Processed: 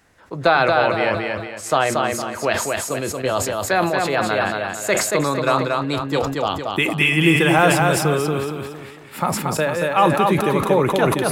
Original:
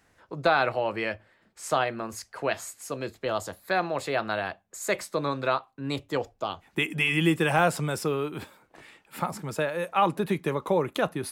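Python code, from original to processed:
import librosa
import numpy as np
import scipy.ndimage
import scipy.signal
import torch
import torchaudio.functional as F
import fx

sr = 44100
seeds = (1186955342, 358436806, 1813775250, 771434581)

p1 = x + fx.echo_feedback(x, sr, ms=230, feedback_pct=38, wet_db=-3.5, dry=0)
p2 = fx.sustainer(p1, sr, db_per_s=52.0)
y = F.gain(torch.from_numpy(p2), 6.5).numpy()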